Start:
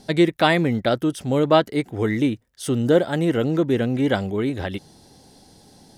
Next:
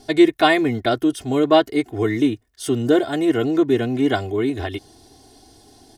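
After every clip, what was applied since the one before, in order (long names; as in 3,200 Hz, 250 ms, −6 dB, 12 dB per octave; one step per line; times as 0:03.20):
comb filter 2.8 ms, depth 92%
level −1 dB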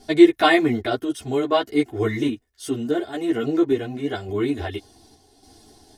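sample-and-hold tremolo
string-ensemble chorus
level +2.5 dB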